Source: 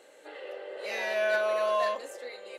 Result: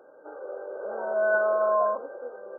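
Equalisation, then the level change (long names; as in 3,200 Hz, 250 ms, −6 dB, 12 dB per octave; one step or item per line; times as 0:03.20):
linear-phase brick-wall low-pass 1,600 Hz
+4.0 dB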